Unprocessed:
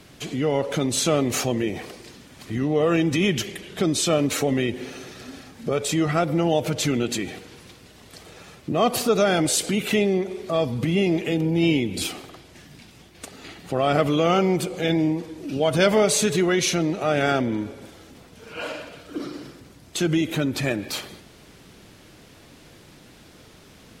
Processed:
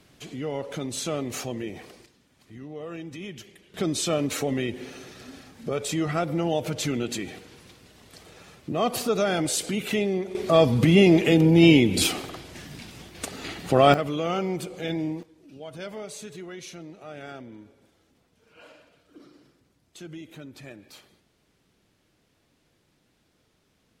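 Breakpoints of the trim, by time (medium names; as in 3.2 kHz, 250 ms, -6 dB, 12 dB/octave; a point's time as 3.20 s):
-8.5 dB
from 2.06 s -17 dB
from 3.74 s -4.5 dB
from 10.35 s +5 dB
from 13.94 s -7.5 dB
from 15.23 s -19 dB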